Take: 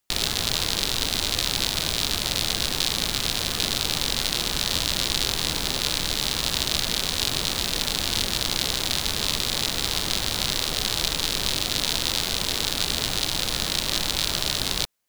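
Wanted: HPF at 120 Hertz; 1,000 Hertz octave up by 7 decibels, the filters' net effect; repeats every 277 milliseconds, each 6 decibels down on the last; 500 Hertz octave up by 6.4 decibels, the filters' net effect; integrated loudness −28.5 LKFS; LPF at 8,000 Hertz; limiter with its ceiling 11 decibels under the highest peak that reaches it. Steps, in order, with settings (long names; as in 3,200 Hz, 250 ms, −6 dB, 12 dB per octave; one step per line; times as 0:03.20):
high-pass filter 120 Hz
low-pass filter 8,000 Hz
parametric band 500 Hz +6 dB
parametric band 1,000 Hz +7 dB
brickwall limiter −14.5 dBFS
repeating echo 277 ms, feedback 50%, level −6 dB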